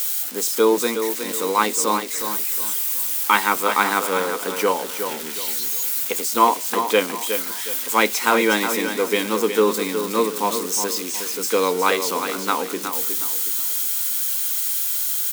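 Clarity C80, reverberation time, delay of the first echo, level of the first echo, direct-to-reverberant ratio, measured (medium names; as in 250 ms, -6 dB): no reverb, no reverb, 365 ms, -8.0 dB, no reverb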